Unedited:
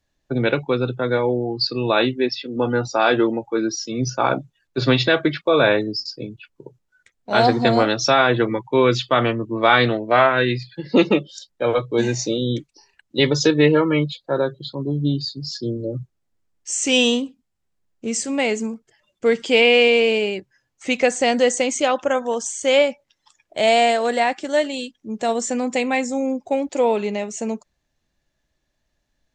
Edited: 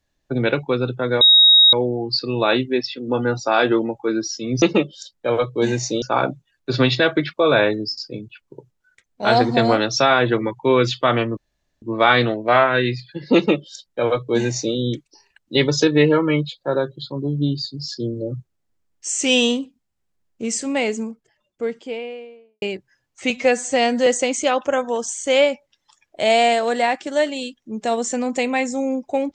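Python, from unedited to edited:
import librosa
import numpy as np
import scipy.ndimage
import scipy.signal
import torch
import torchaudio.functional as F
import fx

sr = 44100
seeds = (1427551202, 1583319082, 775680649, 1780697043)

y = fx.studio_fade_out(x, sr, start_s=18.23, length_s=2.02)
y = fx.edit(y, sr, fx.insert_tone(at_s=1.21, length_s=0.52, hz=3780.0, db=-7.5),
    fx.insert_room_tone(at_s=9.45, length_s=0.45),
    fx.duplicate(start_s=10.98, length_s=1.4, to_s=4.1),
    fx.stretch_span(start_s=20.93, length_s=0.51, factor=1.5), tone=tone)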